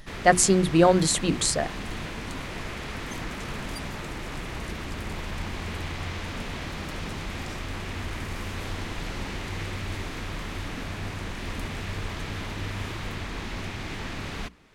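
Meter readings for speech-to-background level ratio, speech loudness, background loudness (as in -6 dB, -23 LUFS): 13.5 dB, -21.0 LUFS, -34.5 LUFS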